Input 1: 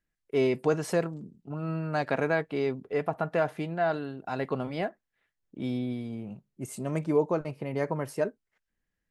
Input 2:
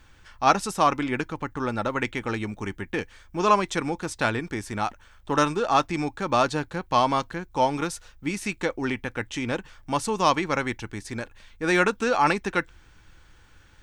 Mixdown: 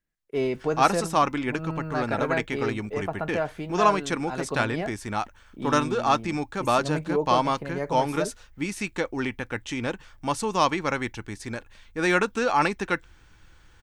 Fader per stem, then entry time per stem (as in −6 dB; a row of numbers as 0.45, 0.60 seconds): −1.0, −1.0 decibels; 0.00, 0.35 seconds